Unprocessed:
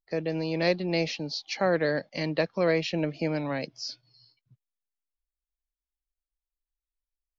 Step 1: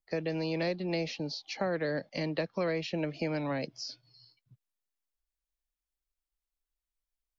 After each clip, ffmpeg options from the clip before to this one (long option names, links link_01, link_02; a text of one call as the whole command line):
ffmpeg -i in.wav -filter_complex "[0:a]acrossover=split=400|830[link_01][link_02][link_03];[link_01]acompressor=threshold=-34dB:ratio=4[link_04];[link_02]acompressor=threshold=-36dB:ratio=4[link_05];[link_03]acompressor=threshold=-38dB:ratio=4[link_06];[link_04][link_05][link_06]amix=inputs=3:normalize=0" out.wav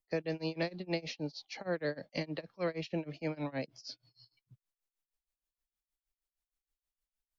ffmpeg -i in.wav -af "tremolo=f=6.4:d=0.96" out.wav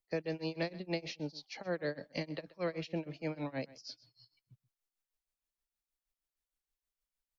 ffmpeg -i in.wav -af "aecho=1:1:129:0.106,volume=-1.5dB" out.wav